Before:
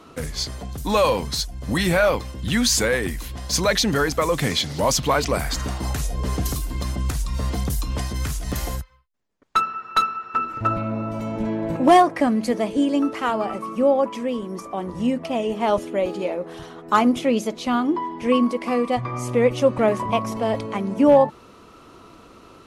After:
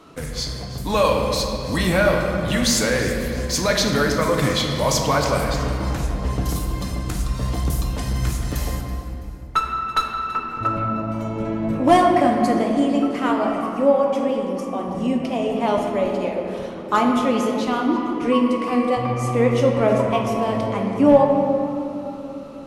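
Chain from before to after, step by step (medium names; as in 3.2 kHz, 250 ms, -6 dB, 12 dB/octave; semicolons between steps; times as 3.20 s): 5.44–6.49 s: peaking EQ 13 kHz -8 dB 1.9 oct; echo whose repeats swap between lows and highs 165 ms, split 1.8 kHz, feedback 64%, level -12.5 dB; simulated room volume 130 m³, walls hard, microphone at 0.36 m; trim -1.5 dB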